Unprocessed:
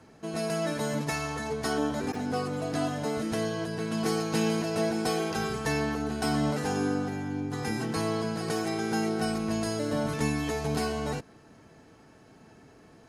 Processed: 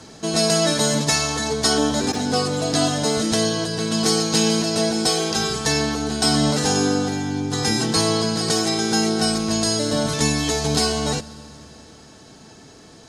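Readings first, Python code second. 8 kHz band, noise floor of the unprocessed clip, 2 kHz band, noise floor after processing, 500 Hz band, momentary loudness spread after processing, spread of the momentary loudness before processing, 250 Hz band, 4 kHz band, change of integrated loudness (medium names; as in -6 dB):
+17.5 dB, -55 dBFS, +7.5 dB, -45 dBFS, +8.0 dB, 5 LU, 4 LU, +8.0 dB, +17.5 dB, +10.0 dB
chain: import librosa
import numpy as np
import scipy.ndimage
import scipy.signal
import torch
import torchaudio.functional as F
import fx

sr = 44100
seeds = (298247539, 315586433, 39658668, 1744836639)

y = fx.band_shelf(x, sr, hz=5400.0, db=11.0, octaves=1.7)
y = fx.rider(y, sr, range_db=10, speed_s=2.0)
y = fx.rev_fdn(y, sr, rt60_s=3.8, lf_ratio=1.0, hf_ratio=0.95, size_ms=30.0, drr_db=18.5)
y = F.gain(torch.from_numpy(y), 7.0).numpy()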